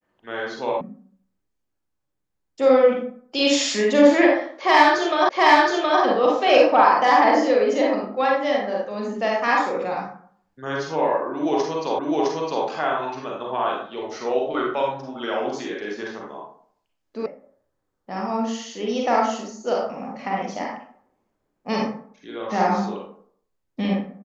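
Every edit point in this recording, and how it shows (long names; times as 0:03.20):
0:00.81: cut off before it has died away
0:05.29: the same again, the last 0.72 s
0:11.99: the same again, the last 0.66 s
0:17.26: cut off before it has died away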